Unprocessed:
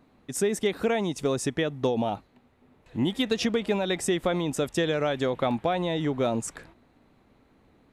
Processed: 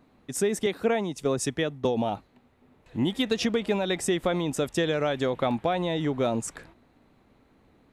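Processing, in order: 0.66–1.85 s: three bands expanded up and down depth 100%

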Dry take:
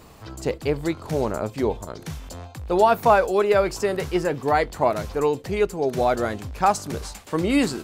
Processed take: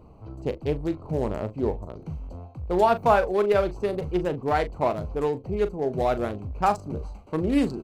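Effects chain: local Wiener filter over 25 samples; bass shelf 100 Hz +5.5 dB; doubling 39 ms -12 dB; trim -3 dB

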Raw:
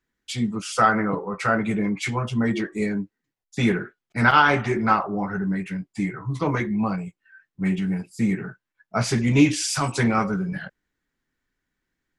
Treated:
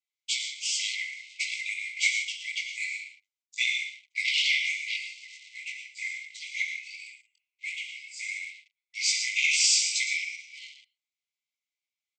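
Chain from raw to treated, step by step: chorus 2.7 Hz, delay 16.5 ms, depth 5 ms; on a send: delay 114 ms -11.5 dB; on the sum: gated-style reverb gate 190 ms flat, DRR 4 dB; waveshaping leveller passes 2; brick-wall FIR band-pass 2–8.4 kHz

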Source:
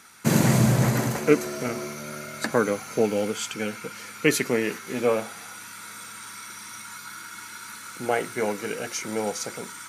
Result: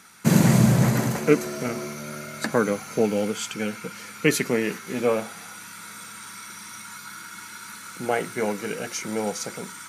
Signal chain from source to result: peaking EQ 180 Hz +6.5 dB 0.46 oct

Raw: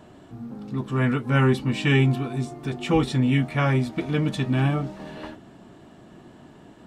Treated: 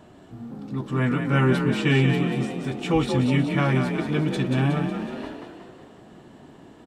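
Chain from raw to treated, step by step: frequency-shifting echo 183 ms, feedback 53%, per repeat +40 Hz, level -6 dB; trim -1 dB

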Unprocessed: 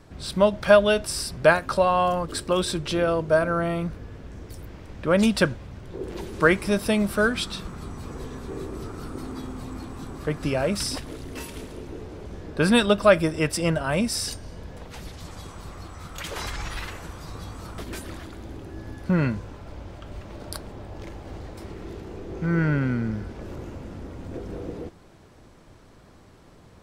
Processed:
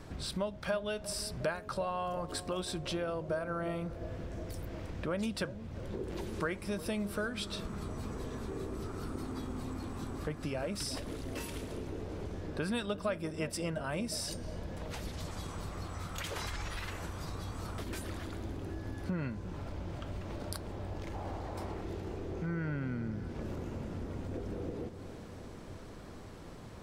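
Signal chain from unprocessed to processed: 21.14–21.81 s: peaking EQ 840 Hz +9 dB 1.2 oct; compression 3:1, threshold -41 dBFS, peak gain reduction 22 dB; bucket-brigade echo 357 ms, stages 2048, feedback 75%, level -12.5 dB; trim +2 dB

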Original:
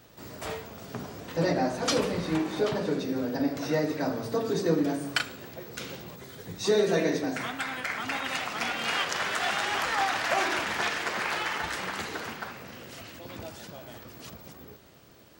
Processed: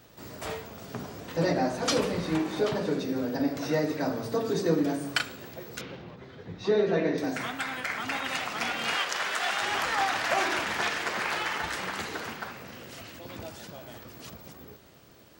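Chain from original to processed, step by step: 5.81–7.18 s: distance through air 250 m; 8.95–9.62 s: high-pass 440 Hz 6 dB/octave

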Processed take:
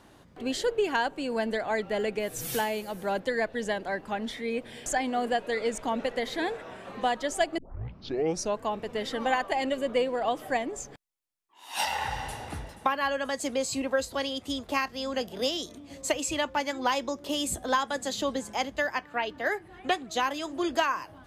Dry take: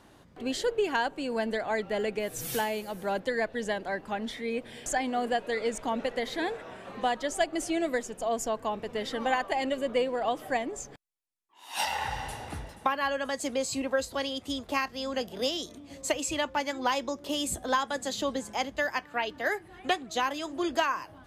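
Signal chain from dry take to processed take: 7.58 s: tape start 1.00 s; 18.82–19.93 s: treble shelf 4.2 kHz -5.5 dB; trim +1 dB

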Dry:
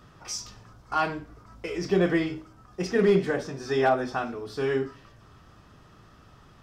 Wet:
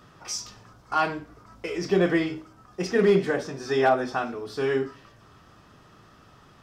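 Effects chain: bass shelf 95 Hz -9.5 dB; trim +2 dB

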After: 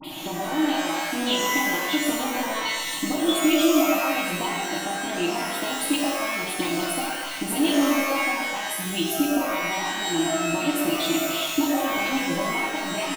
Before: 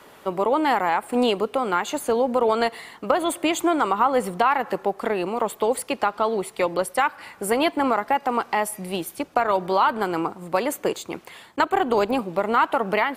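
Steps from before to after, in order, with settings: static phaser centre 1.7 kHz, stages 6; comb 6.4 ms, depth 89%; phase dispersion highs, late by 42 ms, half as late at 1.8 kHz; compression 4:1, threshold -42 dBFS, peak gain reduction 24 dB; FFT filter 190 Hz 0 dB, 310 Hz +14 dB, 460 Hz 0 dB, 820 Hz -2 dB, 1.4 kHz -12 dB, 3.3 kHz +9 dB, 7.8 kHz +4 dB; pitch-shifted reverb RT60 1.2 s, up +12 st, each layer -2 dB, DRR -1 dB; trim +8.5 dB

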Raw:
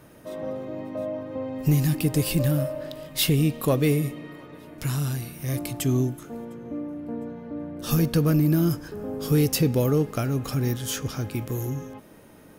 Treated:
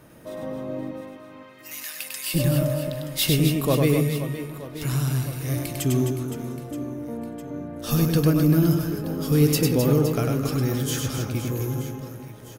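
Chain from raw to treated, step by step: 0.91–2.34 s: high-pass 1.2 kHz 24 dB/octave; reverse bouncing-ball echo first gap 100 ms, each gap 1.6×, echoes 5

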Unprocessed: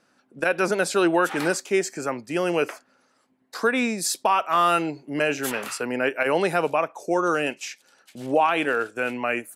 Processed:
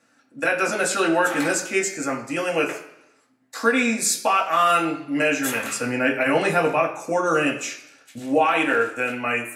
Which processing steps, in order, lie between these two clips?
5.60–8.19 s: peaking EQ 74 Hz +10 dB 2.5 oct; reverberation RT60 0.80 s, pre-delay 3 ms, DRR -2 dB

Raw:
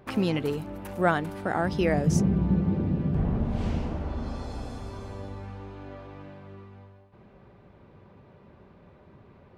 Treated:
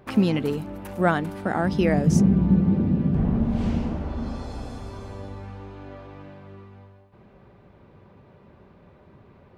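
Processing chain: dynamic bell 220 Hz, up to +7 dB, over -41 dBFS, Q 2.2; trim +1.5 dB

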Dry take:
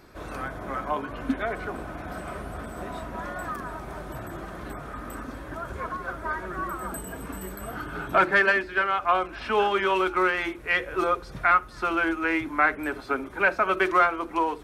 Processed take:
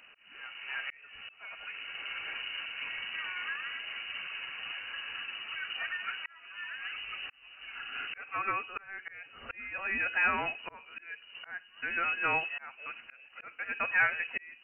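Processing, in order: slow attack 793 ms; frequency inversion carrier 2.9 kHz; trim -4 dB

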